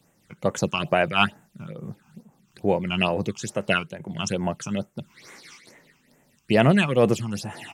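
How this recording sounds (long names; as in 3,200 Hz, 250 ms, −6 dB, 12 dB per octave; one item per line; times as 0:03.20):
phaser sweep stages 8, 2.3 Hz, lowest notch 520–4,600 Hz
amplitude modulation by smooth noise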